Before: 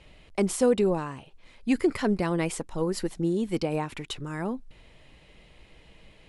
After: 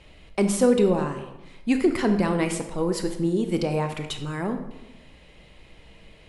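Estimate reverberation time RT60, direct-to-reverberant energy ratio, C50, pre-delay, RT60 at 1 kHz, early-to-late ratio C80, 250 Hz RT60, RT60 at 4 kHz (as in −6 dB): 0.95 s, 6.0 dB, 8.5 dB, 21 ms, 0.95 s, 11.0 dB, 1.1 s, 0.65 s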